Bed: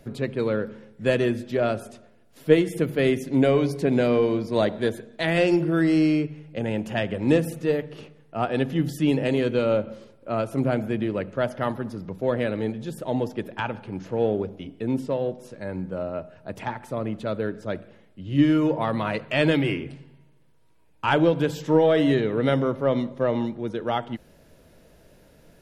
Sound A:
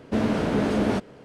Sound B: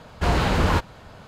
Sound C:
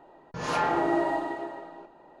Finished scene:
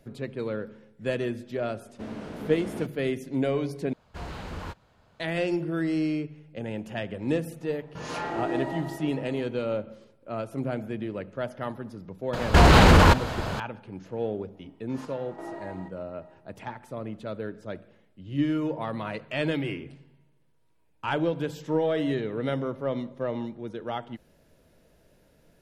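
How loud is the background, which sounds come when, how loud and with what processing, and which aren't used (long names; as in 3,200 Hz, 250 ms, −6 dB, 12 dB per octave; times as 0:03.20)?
bed −7 dB
0:01.87: mix in A −14 dB
0:03.93: overwrite with B −17 dB
0:07.61: mix in C −2.5 dB + dynamic equaliser 1,000 Hz, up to −6 dB, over −40 dBFS, Q 0.89
0:12.33: mix in B −5.5 dB + boost into a limiter +19.5 dB
0:14.55: mix in C −13 dB + square-wave tremolo 1.2 Hz, depth 65%, duty 60%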